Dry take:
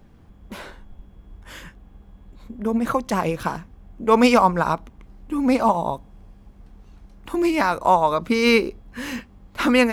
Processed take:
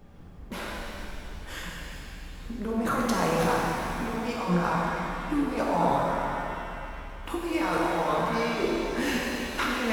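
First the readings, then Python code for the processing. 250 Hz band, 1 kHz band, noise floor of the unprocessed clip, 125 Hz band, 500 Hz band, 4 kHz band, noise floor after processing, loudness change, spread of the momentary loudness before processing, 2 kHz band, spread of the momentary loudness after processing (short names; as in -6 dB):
-7.0 dB, -6.5 dB, -50 dBFS, -0.5 dB, -7.0 dB, -5.5 dB, -42 dBFS, -8.0 dB, 18 LU, -5.0 dB, 15 LU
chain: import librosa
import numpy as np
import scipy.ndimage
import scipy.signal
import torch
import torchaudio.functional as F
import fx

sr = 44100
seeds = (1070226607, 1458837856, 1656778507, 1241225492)

y = fx.over_compress(x, sr, threshold_db=-25.0, ratio=-1.0)
y = fx.hum_notches(y, sr, base_hz=50, count=4)
y = fx.rev_shimmer(y, sr, seeds[0], rt60_s=2.9, semitones=7, shimmer_db=-8, drr_db=-4.0)
y = y * 10.0 ** (-6.5 / 20.0)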